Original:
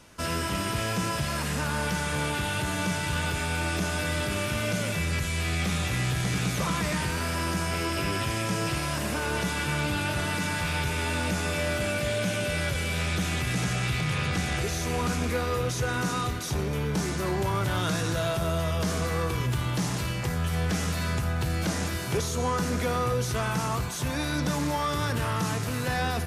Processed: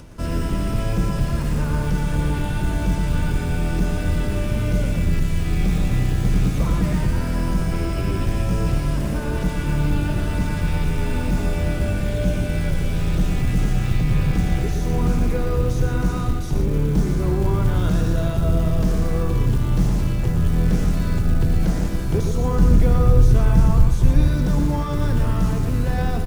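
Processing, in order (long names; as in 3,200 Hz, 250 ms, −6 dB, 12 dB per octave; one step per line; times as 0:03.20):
sub-octave generator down 2 octaves, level +2 dB
upward compression, threshold −39 dBFS
tilt shelving filter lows +7 dB, about 670 Hz
floating-point word with a short mantissa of 4 bits
0:22.58–0:24.28: low-shelf EQ 140 Hz +8.5 dB
single-tap delay 116 ms −6.5 dB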